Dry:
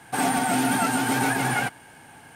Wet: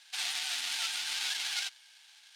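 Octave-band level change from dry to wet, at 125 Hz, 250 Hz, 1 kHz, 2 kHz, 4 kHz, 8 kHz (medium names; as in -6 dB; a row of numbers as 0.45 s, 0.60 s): under -40 dB, under -40 dB, -24.0 dB, -11.5 dB, +3.0 dB, -7.5 dB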